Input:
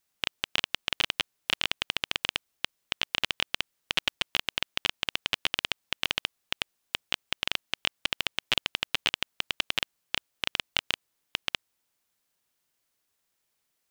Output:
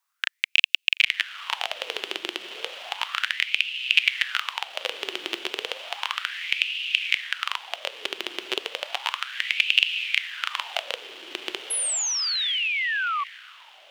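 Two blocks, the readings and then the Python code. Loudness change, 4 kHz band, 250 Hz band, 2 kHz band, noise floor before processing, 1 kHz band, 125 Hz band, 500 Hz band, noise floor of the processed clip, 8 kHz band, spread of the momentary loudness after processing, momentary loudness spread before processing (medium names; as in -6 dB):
+5.5 dB, +4.0 dB, 0.0 dB, +7.5 dB, -78 dBFS, +7.0 dB, under -20 dB, +5.5 dB, -76 dBFS, +12.0 dB, 12 LU, 6 LU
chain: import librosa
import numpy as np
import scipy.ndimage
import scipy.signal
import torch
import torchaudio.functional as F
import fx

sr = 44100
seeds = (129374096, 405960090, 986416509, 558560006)

y = fx.echo_diffused(x, sr, ms=990, feedback_pct=48, wet_db=-7)
y = fx.filter_lfo_highpass(y, sr, shape='sine', hz=0.33, low_hz=350.0, high_hz=2700.0, q=7.0)
y = fx.spec_paint(y, sr, seeds[0], shape='fall', start_s=11.7, length_s=1.54, low_hz=1100.0, high_hz=11000.0, level_db=-24.0)
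y = y * librosa.db_to_amplitude(-2.0)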